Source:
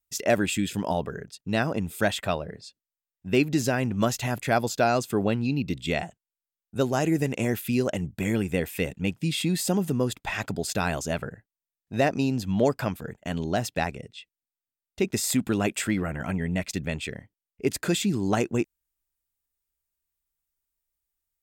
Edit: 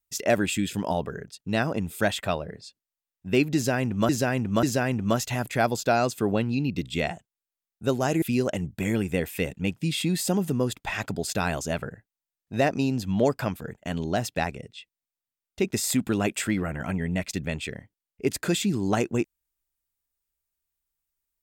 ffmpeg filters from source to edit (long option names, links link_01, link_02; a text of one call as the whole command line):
ffmpeg -i in.wav -filter_complex "[0:a]asplit=4[link_01][link_02][link_03][link_04];[link_01]atrim=end=4.092[link_05];[link_02]atrim=start=3.548:end=4.092[link_06];[link_03]atrim=start=3.548:end=7.142[link_07];[link_04]atrim=start=7.618[link_08];[link_05][link_06]acrossfade=duration=0.004:curve1=hsin:curve2=hsin[link_09];[link_09][link_07]acrossfade=duration=0.004:curve1=hsin:curve2=hsin[link_10];[link_10][link_08]acrossfade=duration=0.004:curve1=hsin:curve2=hsin" out.wav